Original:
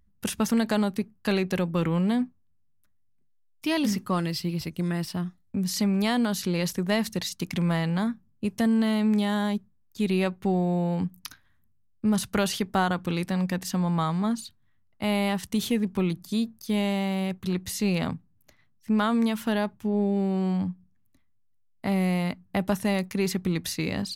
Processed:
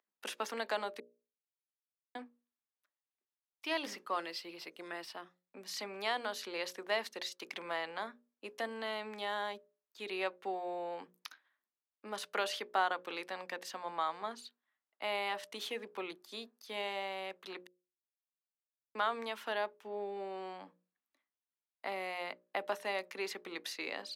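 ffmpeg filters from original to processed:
-filter_complex "[0:a]asplit=5[s0][s1][s2][s3][s4];[s0]atrim=end=1,asetpts=PTS-STARTPTS,afade=t=out:st=0.996:d=0.004:c=hsin[s5];[s1]atrim=start=1:end=2.15,asetpts=PTS-STARTPTS,volume=0[s6];[s2]atrim=start=2.15:end=17.67,asetpts=PTS-STARTPTS,afade=t=in:d=0.004:c=hsin,afade=t=out:st=15.516:d=0.004:c=hsin[s7];[s3]atrim=start=17.67:end=18.95,asetpts=PTS-STARTPTS,volume=0[s8];[s4]atrim=start=18.95,asetpts=PTS-STARTPTS,afade=t=in:d=0.004:c=hsin[s9];[s5][s6][s7][s8][s9]concat=n=5:v=0:a=1,highpass=f=280:w=0.5412,highpass=f=280:w=1.3066,acrossover=split=430 4600:gain=0.141 1 0.251[s10][s11][s12];[s10][s11][s12]amix=inputs=3:normalize=0,bandreject=f=60:t=h:w=6,bandreject=f=120:t=h:w=6,bandreject=f=180:t=h:w=6,bandreject=f=240:t=h:w=6,bandreject=f=300:t=h:w=6,bandreject=f=360:t=h:w=6,bandreject=f=420:t=h:w=6,bandreject=f=480:t=h:w=6,bandreject=f=540:t=h:w=6,bandreject=f=600:t=h:w=6,volume=0.562"

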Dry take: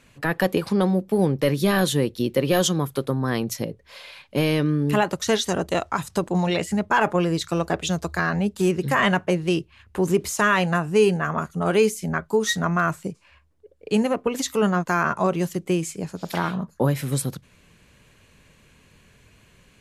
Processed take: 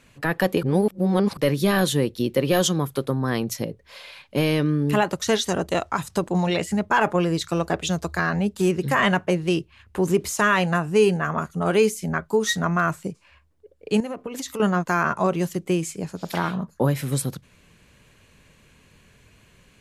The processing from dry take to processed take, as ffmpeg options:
-filter_complex "[0:a]asettb=1/sr,asplit=3[s0][s1][s2];[s0]atrim=end=14.004[s3];[s1]atrim=start=14:end=14.6,asetpts=PTS-STARTPTS,afade=t=in:d=0.004:c=qsin,afade=t=out:st=0.596:d=0.004:c=qsin,acompressor=threshold=0.0398:ratio=5:attack=3.2:release=140:knee=1:detection=peak[s4];[s2]atrim=start=14.596[s5];[s3][s4]acrossfade=d=0.004:c1=hsin:c2=qsin[s6];[s6][s5]acrossfade=d=0.004:c1=qsin:c2=hsin,asplit=3[s7][s8][s9];[s7]atrim=end=0.632[s10];[s8]atrim=start=0.628:end=1.372,asetpts=PTS-STARTPTS,areverse[s11];[s9]atrim=start=1.368[s12];[s10][s11]acrossfade=d=0.004:c1=hsin:c2=hsin[s13];[s13][s12]acrossfade=d=0.004:c1=hsin:c2=hsin"

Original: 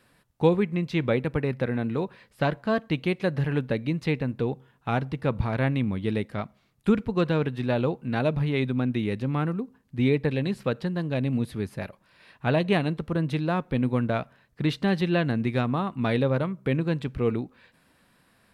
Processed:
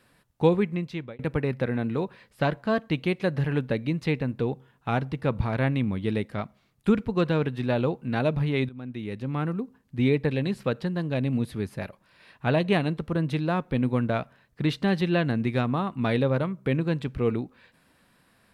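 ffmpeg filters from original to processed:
-filter_complex "[0:a]asplit=3[s0][s1][s2];[s0]atrim=end=1.19,asetpts=PTS-STARTPTS,afade=t=out:st=0.66:d=0.53[s3];[s1]atrim=start=1.19:end=8.69,asetpts=PTS-STARTPTS,afade=t=in:d=0.004:c=hsin,afade=t=out:st=7.496:d=0.004:c=hsin:silence=0.112202[s4];[s2]atrim=start=8.69,asetpts=PTS-STARTPTS,afade=t=in:d=0.91:silence=0.112202[s5];[s3][s4][s5]concat=n=3:v=0:a=1"

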